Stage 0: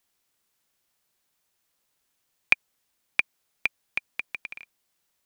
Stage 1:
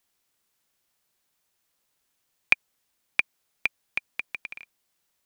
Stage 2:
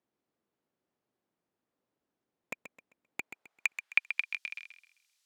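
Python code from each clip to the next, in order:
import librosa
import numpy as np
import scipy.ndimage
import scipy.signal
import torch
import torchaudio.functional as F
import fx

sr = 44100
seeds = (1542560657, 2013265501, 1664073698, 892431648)

y1 = x
y2 = (np.mod(10.0 ** (10.5 / 20.0) * y1 + 1.0, 2.0) - 1.0) / 10.0 ** (10.5 / 20.0)
y2 = fx.filter_sweep_bandpass(y2, sr, from_hz=290.0, to_hz=4900.0, start_s=3.04, end_s=4.32, q=0.95)
y2 = fx.echo_feedback(y2, sr, ms=131, feedback_pct=32, wet_db=-10.0)
y2 = y2 * 10.0 ** (4.0 / 20.0)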